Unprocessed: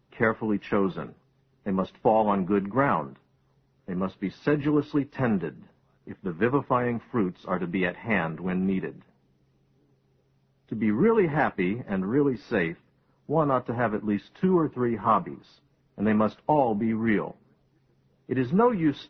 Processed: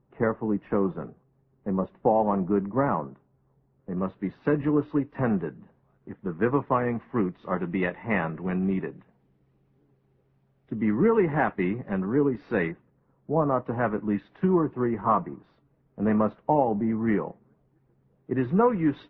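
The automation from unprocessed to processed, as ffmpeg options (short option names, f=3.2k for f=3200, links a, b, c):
-af "asetnsamples=n=441:p=0,asendcmd='3.97 lowpass f 1700;6.51 lowpass f 2300;12.71 lowpass f 1300;13.65 lowpass f 2100;15.01 lowpass f 1500;18.38 lowpass f 2200',lowpass=1.1k"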